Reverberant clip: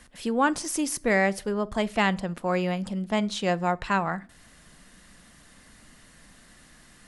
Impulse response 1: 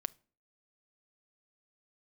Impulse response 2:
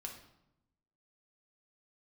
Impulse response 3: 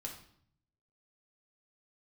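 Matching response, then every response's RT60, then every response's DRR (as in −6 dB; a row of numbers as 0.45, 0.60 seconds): 1; 0.45, 0.85, 0.60 seconds; 16.0, 1.0, −0.5 decibels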